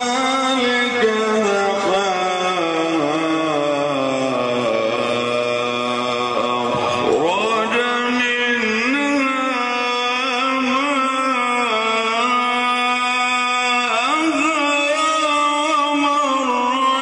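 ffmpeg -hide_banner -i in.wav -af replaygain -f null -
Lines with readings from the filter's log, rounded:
track_gain = +0.2 dB
track_peak = 0.300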